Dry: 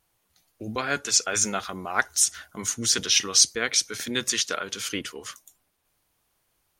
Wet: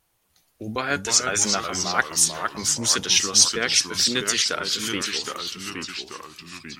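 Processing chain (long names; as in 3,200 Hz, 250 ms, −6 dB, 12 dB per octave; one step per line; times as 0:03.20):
delay with pitch and tempo change per echo 215 ms, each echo −2 semitones, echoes 3, each echo −6 dB
level +2 dB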